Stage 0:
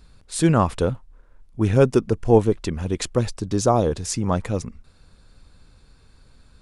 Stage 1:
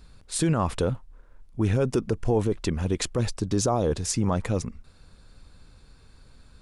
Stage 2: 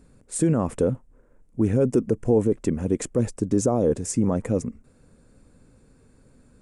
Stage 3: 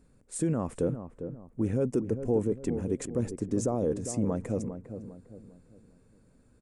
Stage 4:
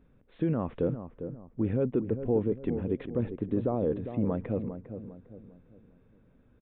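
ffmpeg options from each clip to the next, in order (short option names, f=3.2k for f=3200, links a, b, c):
-af "alimiter=limit=-14dB:level=0:latency=1:release=43"
-af "equalizer=f=125:t=o:w=1:g=6,equalizer=f=250:t=o:w=1:g=12,equalizer=f=500:t=o:w=1:g=10,equalizer=f=2k:t=o:w=1:g=4,equalizer=f=4k:t=o:w=1:g=-10,equalizer=f=8k:t=o:w=1:g=11,volume=-8dB"
-filter_complex "[0:a]asplit=2[a][b];[b]adelay=402,lowpass=f=1k:p=1,volume=-9dB,asplit=2[c][d];[d]adelay=402,lowpass=f=1k:p=1,volume=0.42,asplit=2[e][f];[f]adelay=402,lowpass=f=1k:p=1,volume=0.42,asplit=2[g][h];[h]adelay=402,lowpass=f=1k:p=1,volume=0.42,asplit=2[i][j];[j]adelay=402,lowpass=f=1k:p=1,volume=0.42[k];[a][c][e][g][i][k]amix=inputs=6:normalize=0,volume=-7.5dB"
-af "aresample=8000,aresample=44100"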